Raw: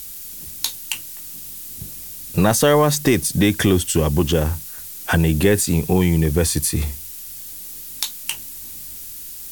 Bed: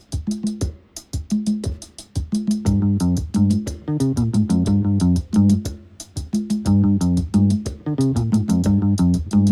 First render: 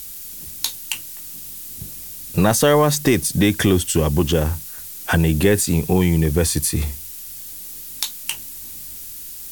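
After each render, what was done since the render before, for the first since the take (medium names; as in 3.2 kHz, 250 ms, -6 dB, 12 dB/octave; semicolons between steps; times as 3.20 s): no audible change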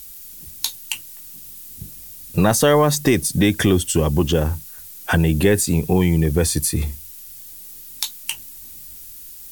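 noise reduction 6 dB, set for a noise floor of -35 dBFS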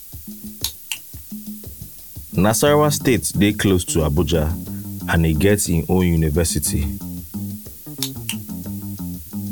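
add bed -12.5 dB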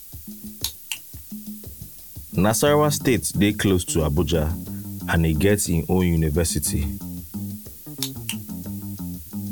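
trim -3 dB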